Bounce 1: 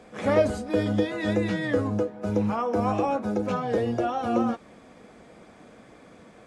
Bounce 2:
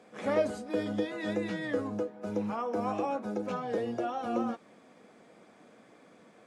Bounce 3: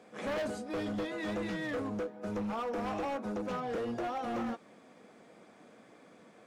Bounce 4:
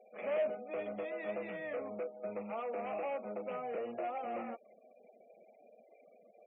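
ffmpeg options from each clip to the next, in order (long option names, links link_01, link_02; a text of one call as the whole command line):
ffmpeg -i in.wav -af "highpass=170,volume=-6.5dB" out.wav
ffmpeg -i in.wav -af "asoftclip=type=hard:threshold=-32dB" out.wav
ffmpeg -i in.wav -af "highpass=280,equalizer=frequency=300:width_type=q:width=4:gain=-9,equalizer=frequency=620:width_type=q:width=4:gain=8,equalizer=frequency=1000:width_type=q:width=4:gain=-6,equalizer=frequency=1600:width_type=q:width=4:gain=-8,equalizer=frequency=2400:width_type=q:width=4:gain=7,lowpass=frequency=2600:width=0.5412,lowpass=frequency=2600:width=1.3066,afftfilt=real='re*gte(hypot(re,im),0.00282)':imag='im*gte(hypot(re,im),0.00282)':win_size=1024:overlap=0.75,volume=-3.5dB" out.wav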